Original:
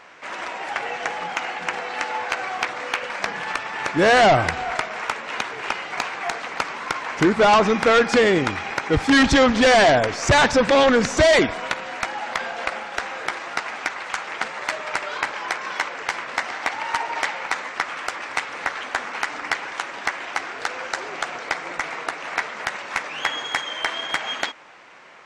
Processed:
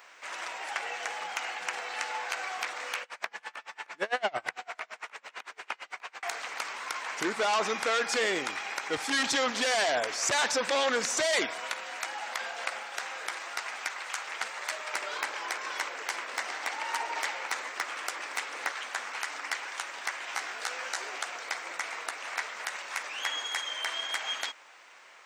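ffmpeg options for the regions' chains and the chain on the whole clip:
-filter_complex "[0:a]asettb=1/sr,asplit=3[a][b][c];[a]atrim=end=3.024[d];[b]atrim=start=3.02:end=6.23,asetpts=PTS-STARTPTS,afade=t=in:d=0.004:c=qsin,afade=t=out:st=3.206:d=0.004:c=qsin,acrossover=split=3300[e][f];[f]acompressor=threshold=-42dB:ratio=4:attack=1:release=60[g];[e][g]amix=inputs=2:normalize=0,aeval=exprs='val(0)*pow(10,-31*(0.5-0.5*cos(2*PI*8.9*n/s))/20)':c=same[h];[c]atrim=start=6.226[i];[d][h]acrossfade=d=0.004:c1=hsin:c2=qsin[j];[j][i]acrossfade=d=0.004:c1=qsin:c2=hsin,asettb=1/sr,asplit=3[k][l][m];[k]atrim=end=14.934[n];[l]atrim=start=14.93:end=18.72,asetpts=PTS-STARTPTS,afade=t=in:d=0.004:c=qsin,afade=t=out:st=3.786:d=0.004:c=qsin,equalizer=f=330:t=o:w=1.6:g=6.5,asoftclip=type=hard:threshold=-11.5dB[o];[m]atrim=start=18.716[p];[n][o]acrossfade=d=0.004:c1=hsin:c2=qsin[q];[q][p]acrossfade=d=0.004:c1=qsin:c2=hsin,asettb=1/sr,asplit=3[r][s][t];[r]atrim=end=20.274[u];[s]atrim=start=20.27:end=21.18,asetpts=PTS-STARTPTS,afade=t=in:d=0.004:c=qsin,afade=t=out:st=0.906:d=0.004:c=qsin,aeval=exprs='val(0)+0.00282*(sin(2*PI*50*n/s)+sin(2*PI*2*50*n/s)/2+sin(2*PI*3*50*n/s)/3+sin(2*PI*4*50*n/s)/4+sin(2*PI*5*50*n/s)/5)':c=same,asplit=2[v][w];[w]adelay=16,volume=-3.5dB[x];[v][x]amix=inputs=2:normalize=0,atrim=end_sample=40131[y];[t]atrim=start=21.176[z];[u][y]acrossfade=d=0.004:c1=hsin:c2=qsin[aa];[aa][z]acrossfade=d=0.004:c1=qsin:c2=hsin,highpass=f=440:p=1,aemphasis=mode=production:type=bsi,alimiter=limit=-9.5dB:level=0:latency=1:release=31,volume=-7.5dB"

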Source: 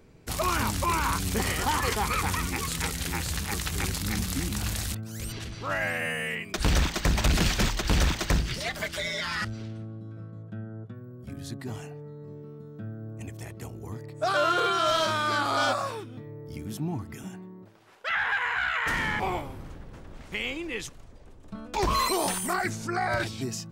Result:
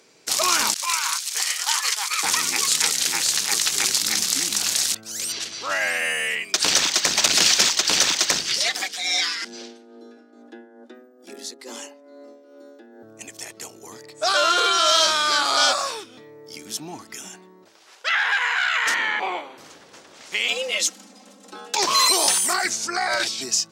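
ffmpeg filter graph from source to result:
-filter_complex "[0:a]asettb=1/sr,asplit=3[a][b][c];[a]atrim=end=0.744[d];[b]atrim=start=0.74:end=2.23,asetpts=PTS-STARTPTS,afade=t=in:d=0.004:c=qsin,afade=t=out:st=1.486:d=0.004:c=qsin,agate=range=-33dB:threshold=-24dB:ratio=3:release=100:detection=peak,highpass=1.1k[e];[c]atrim=start=2.226[f];[d][e]acrossfade=d=0.004:c1=hsin:c2=qsin[g];[g][f]acrossfade=d=0.004:c1=qsin:c2=hsin,asettb=1/sr,asplit=3[h][i][j];[h]atrim=end=8.744[k];[i]atrim=start=8.74:end=13.03,asetpts=PTS-STARTPTS,afade=t=in:d=0.004:c=qsin,afade=t=out:st=4.286:d=0.004:c=qsin,tremolo=f=2.3:d=0.62,afreqshift=130[l];[j]atrim=start=13.026[m];[k][l]acrossfade=d=0.004:c1=hsin:c2=qsin[n];[n][m]acrossfade=d=0.004:c1=qsin:c2=hsin,asettb=1/sr,asplit=3[o][p][q];[o]atrim=end=18.944[r];[p]atrim=start=18.94:end=19.58,asetpts=PTS-STARTPTS,afade=t=in:d=0.004:c=qsin,afade=t=out:st=0.636:d=0.004:c=qsin,asuperstop=centerf=5200:order=8:qfactor=5.6,acrossover=split=190 3800:gain=0.0708 1 0.1[s][t][u];[s][t][u]amix=inputs=3:normalize=0[v];[q]atrim=start=19.576[w];[r][v]acrossfade=d=0.004:c1=hsin:c2=qsin[x];[x][w]acrossfade=d=0.004:c1=qsin:c2=hsin,asettb=1/sr,asplit=3[y][z][aa];[y]atrim=end=20.484[ab];[z]atrim=start=20.48:end=21.75,asetpts=PTS-STARTPTS,afade=t=in:d=0.004:c=qsin,afade=t=out:st=1.266:d=0.004:c=qsin,highshelf=f=12k:g=8.5,afreqshift=180,aecho=1:1:3.8:0.79,atrim=end_sample=56007[ac];[aa]atrim=start=21.746[ad];[ab][ac]acrossfade=d=0.004:c1=hsin:c2=qsin[ae];[ae][ad]acrossfade=d=0.004:c1=qsin:c2=hsin,highpass=380,equalizer=f=5.8k:w=0.6:g=14.5,volume=2.5dB"

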